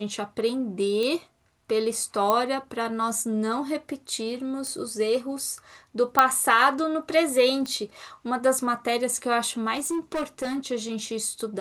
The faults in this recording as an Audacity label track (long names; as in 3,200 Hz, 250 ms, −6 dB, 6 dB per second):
1.030000	1.030000	click −17 dBFS
2.300000	2.300000	click −9 dBFS
4.670000	4.670000	click
6.190000	6.190000	click −4 dBFS
7.660000	7.660000	click −19 dBFS
9.740000	10.660000	clipping −24 dBFS